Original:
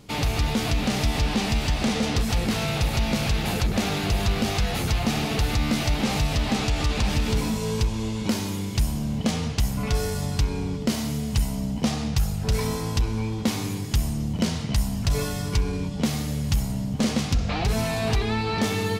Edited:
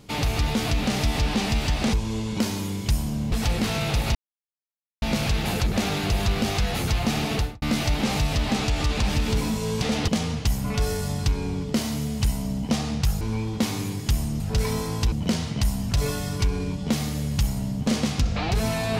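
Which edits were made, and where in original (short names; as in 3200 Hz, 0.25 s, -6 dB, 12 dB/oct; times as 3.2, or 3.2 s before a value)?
1.93–2.19 swap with 7.82–9.21
3.02 insert silence 0.87 s
5.35–5.62 studio fade out
12.34–13.06 move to 14.25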